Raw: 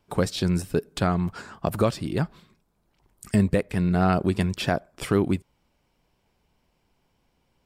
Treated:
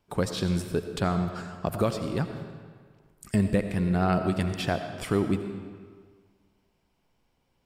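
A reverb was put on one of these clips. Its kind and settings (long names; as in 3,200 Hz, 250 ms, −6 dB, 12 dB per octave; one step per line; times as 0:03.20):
comb and all-pass reverb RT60 1.7 s, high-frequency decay 0.8×, pre-delay 45 ms, DRR 7.5 dB
level −3.5 dB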